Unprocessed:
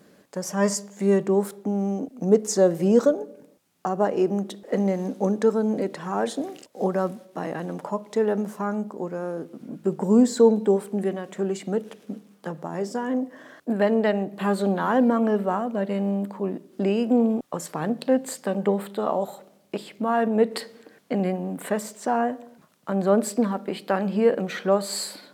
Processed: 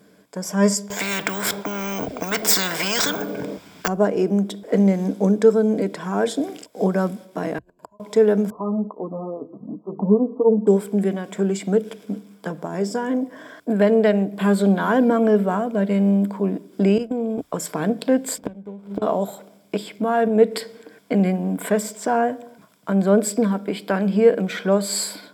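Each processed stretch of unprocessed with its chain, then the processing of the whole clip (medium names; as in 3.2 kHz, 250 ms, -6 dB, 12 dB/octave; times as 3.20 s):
0.90–3.88 s: distance through air 81 m + careless resampling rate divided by 2×, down none, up hold + spectrum-flattening compressor 10:1
7.58–8.00 s: rippled EQ curve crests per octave 1.4, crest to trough 12 dB + inverted gate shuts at -21 dBFS, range -40 dB
8.50–10.67 s: brick-wall FIR low-pass 1.3 kHz + cancelling through-zero flanger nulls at 1.1 Hz, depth 5.9 ms
16.98–17.38 s: expander -18 dBFS + compression 4:1, threshold -24 dBFS
18.38–19.02 s: median filter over 25 samples + bass shelf 390 Hz +7 dB + inverted gate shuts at -15 dBFS, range -24 dB
whole clip: rippled EQ curve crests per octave 1.7, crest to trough 7 dB; level rider gain up to 5 dB; dynamic bell 940 Hz, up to -5 dB, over -34 dBFS, Q 1.6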